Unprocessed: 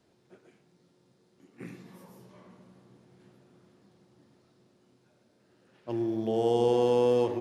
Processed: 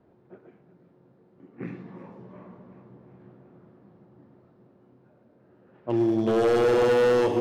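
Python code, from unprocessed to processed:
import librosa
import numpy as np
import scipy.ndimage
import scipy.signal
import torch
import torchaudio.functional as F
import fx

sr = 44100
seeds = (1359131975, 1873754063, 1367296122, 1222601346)

y = fx.env_lowpass(x, sr, base_hz=1200.0, full_db=-25.0)
y = fx.echo_feedback(y, sr, ms=365, feedback_pct=56, wet_db=-14)
y = np.clip(y, -10.0 ** (-25.0 / 20.0), 10.0 ** (-25.0 / 20.0))
y = F.gain(torch.from_numpy(y), 7.5).numpy()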